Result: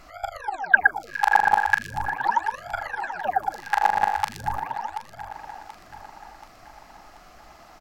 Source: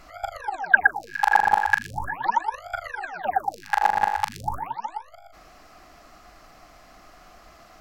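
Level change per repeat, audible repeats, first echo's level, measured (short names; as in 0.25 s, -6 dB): -5.5 dB, 4, -13.0 dB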